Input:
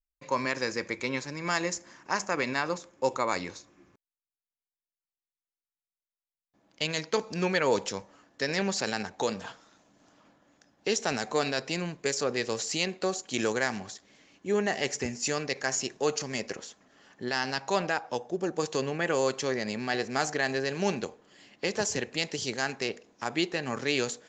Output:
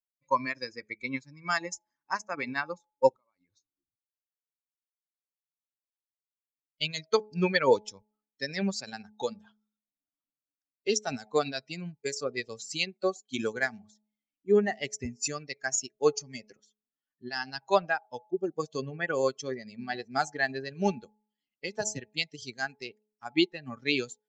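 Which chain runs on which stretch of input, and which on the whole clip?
0:03.14–0:03.57: high-frequency loss of the air 90 metres + downward compressor 16 to 1, threshold −42 dBFS
whole clip: spectral dynamics exaggerated over time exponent 2; hum removal 212.7 Hz, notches 4; expander for the loud parts 1.5 to 1, over −46 dBFS; level +8.5 dB

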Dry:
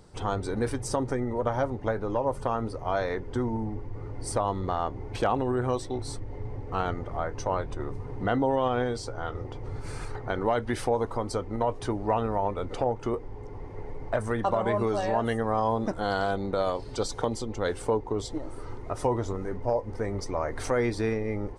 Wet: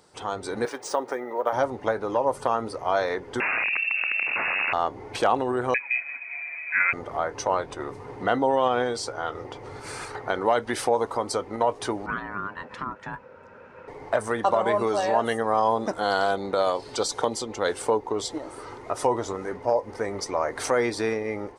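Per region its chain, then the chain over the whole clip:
0:00.65–0:01.53: high-pass filter 390 Hz + high-shelf EQ 3,600 Hz −5.5 dB + linearly interpolated sample-rate reduction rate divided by 3×
0:03.40–0:04.73: wrap-around overflow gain 26 dB + voice inversion scrambler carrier 2,700 Hz + envelope flattener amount 70%
0:05.74–0:06.93: Butterworth high-pass 220 Hz 48 dB per octave + comb filter 7.1 ms, depth 94% + voice inversion scrambler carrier 2,800 Hz
0:12.06–0:13.88: low-pass filter 2,400 Hz 6 dB per octave + ring modulation 510 Hz + drawn EQ curve 240 Hz 0 dB, 390 Hz −10 dB, 610 Hz −14 dB, 870 Hz −11 dB, 1,800 Hz +2 dB, 2,900 Hz −2 dB
whole clip: high-pass filter 670 Hz 6 dB per octave; dynamic equaliser 2,100 Hz, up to −3 dB, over −41 dBFS, Q 0.77; automatic gain control gain up to 5.5 dB; level +2.5 dB

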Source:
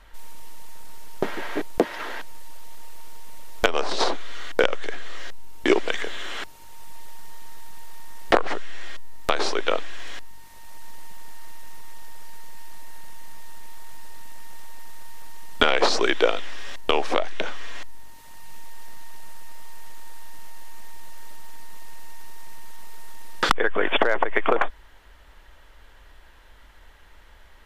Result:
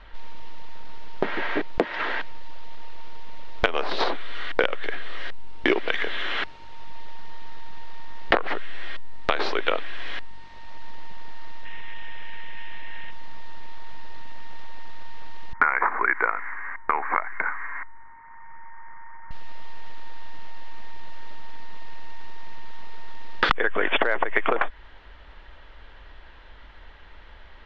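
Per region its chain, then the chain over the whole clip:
0:11.65–0:13.11: low-pass filter 5,700 Hz 24 dB per octave + flat-topped bell 2,300 Hz +9.5 dB 1.2 octaves + notch filter 4,500 Hz, Q 7.6
0:15.53–0:19.31: Chebyshev low-pass with heavy ripple 2,200 Hz, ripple 3 dB + low shelf with overshoot 770 Hz −9 dB, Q 3
whole clip: low-pass filter 4,200 Hz 24 dB per octave; downward compressor 2.5 to 1, threshold −25 dBFS; dynamic equaliser 1,900 Hz, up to +4 dB, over −44 dBFS, Q 1.1; level +4 dB

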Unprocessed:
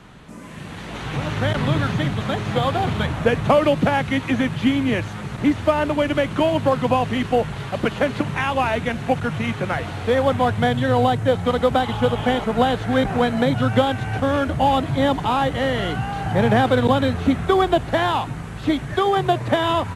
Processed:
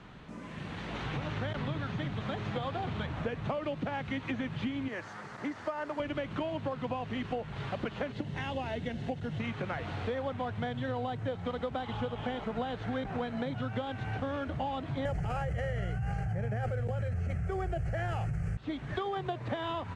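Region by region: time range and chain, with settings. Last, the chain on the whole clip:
0:04.88–0:06.00: high-pass filter 770 Hz 6 dB per octave + flat-topped bell 3,000 Hz −8.5 dB 1 octave
0:08.12–0:09.40: parametric band 1,200 Hz −12 dB 1 octave + notch filter 2,400 Hz, Q 7.2
0:15.05–0:18.57: bass and treble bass +13 dB, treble +10 dB + phaser with its sweep stopped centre 1,000 Hz, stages 6 + envelope flattener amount 100%
whole clip: low-pass filter 4,900 Hz 12 dB per octave; downward compressor, threshold −26 dBFS; level −6 dB

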